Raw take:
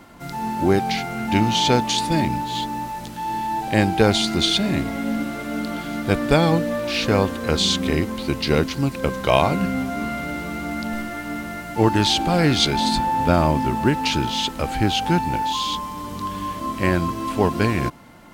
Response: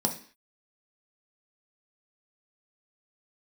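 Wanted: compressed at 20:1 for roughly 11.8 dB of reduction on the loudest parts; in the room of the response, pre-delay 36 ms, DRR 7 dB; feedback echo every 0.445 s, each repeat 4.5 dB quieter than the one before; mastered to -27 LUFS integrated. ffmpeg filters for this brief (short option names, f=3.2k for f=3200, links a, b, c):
-filter_complex "[0:a]acompressor=threshold=-23dB:ratio=20,aecho=1:1:445|890|1335|1780|2225|2670|3115|3560|4005:0.596|0.357|0.214|0.129|0.0772|0.0463|0.0278|0.0167|0.01,asplit=2[a][b];[1:a]atrim=start_sample=2205,adelay=36[c];[b][c]afir=irnorm=-1:irlink=0,volume=-14.5dB[d];[a][d]amix=inputs=2:normalize=0,volume=-3.5dB"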